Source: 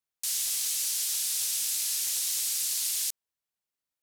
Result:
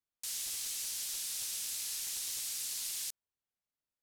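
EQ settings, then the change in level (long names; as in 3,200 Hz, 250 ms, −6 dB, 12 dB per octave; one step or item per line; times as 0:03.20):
spectral tilt −1.5 dB per octave
−4.5 dB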